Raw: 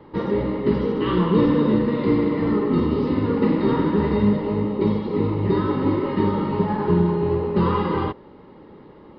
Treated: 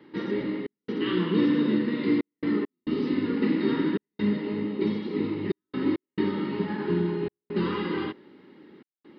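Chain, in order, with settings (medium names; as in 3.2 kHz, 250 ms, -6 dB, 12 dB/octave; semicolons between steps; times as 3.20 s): high-pass 280 Hz 12 dB/octave; high-order bell 740 Hz -12.5 dB; trance gate "xxx.xxxxxx.x.xx" 68 bpm -60 dB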